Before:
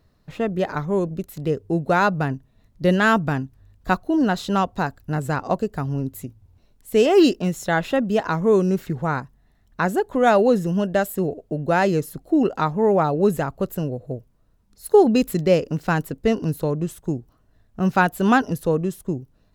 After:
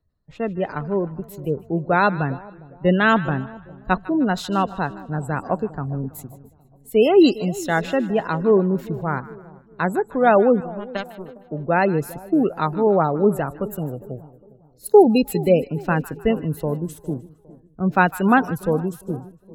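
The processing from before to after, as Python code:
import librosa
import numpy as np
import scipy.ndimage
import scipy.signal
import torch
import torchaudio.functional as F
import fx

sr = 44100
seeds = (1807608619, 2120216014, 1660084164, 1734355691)

p1 = fx.power_curve(x, sr, exponent=2.0, at=(10.6, 11.44))
p2 = fx.spec_gate(p1, sr, threshold_db=-30, keep='strong')
p3 = p2 + fx.echo_split(p2, sr, split_hz=890.0, low_ms=407, high_ms=154, feedback_pct=52, wet_db=-15.5, dry=0)
y = fx.band_widen(p3, sr, depth_pct=40)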